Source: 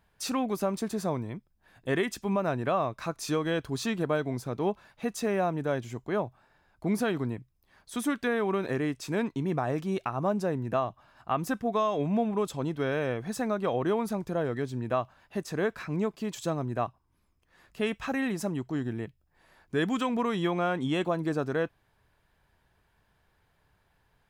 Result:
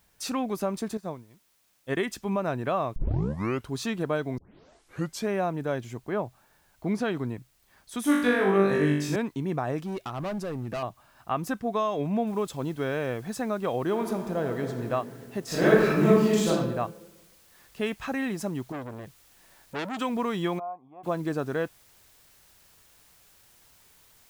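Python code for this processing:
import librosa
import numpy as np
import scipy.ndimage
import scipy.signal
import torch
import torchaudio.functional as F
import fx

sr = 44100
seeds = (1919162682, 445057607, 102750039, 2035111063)

y = fx.upward_expand(x, sr, threshold_db=-42.0, expansion=2.5, at=(0.97, 1.97))
y = fx.lowpass(y, sr, hz=fx.line((6.03, 2900.0), (7.1, 7000.0)), slope=12, at=(6.03, 7.1), fade=0.02)
y = fx.room_flutter(y, sr, wall_m=3.5, rt60_s=0.77, at=(8.03, 9.16))
y = fx.clip_hard(y, sr, threshold_db=-29.0, at=(9.85, 10.83))
y = fx.noise_floor_step(y, sr, seeds[0], at_s=12.27, before_db=-68, after_db=-59, tilt_db=0.0)
y = fx.reverb_throw(y, sr, start_s=13.86, length_s=0.97, rt60_s=2.8, drr_db=5.0)
y = fx.reverb_throw(y, sr, start_s=15.45, length_s=1.03, rt60_s=1.1, drr_db=-10.5)
y = fx.transformer_sat(y, sr, knee_hz=1800.0, at=(18.72, 19.99))
y = fx.formant_cascade(y, sr, vowel='a', at=(20.58, 21.03), fade=0.02)
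y = fx.edit(y, sr, fx.tape_start(start_s=2.96, length_s=0.74),
    fx.tape_start(start_s=4.38, length_s=0.91), tone=tone)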